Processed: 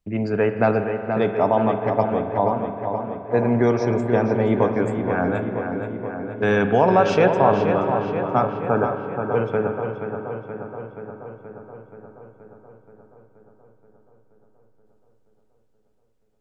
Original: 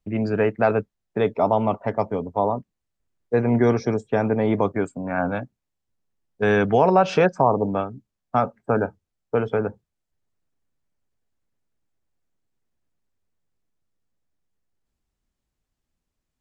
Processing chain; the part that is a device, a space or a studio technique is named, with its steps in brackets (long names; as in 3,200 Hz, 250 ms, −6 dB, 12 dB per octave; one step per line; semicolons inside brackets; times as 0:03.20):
dub delay into a spring reverb (feedback echo with a low-pass in the loop 477 ms, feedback 68%, low-pass 3,400 Hz, level −6.5 dB; spring reverb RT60 3.2 s, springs 44 ms, chirp 35 ms, DRR 8 dB)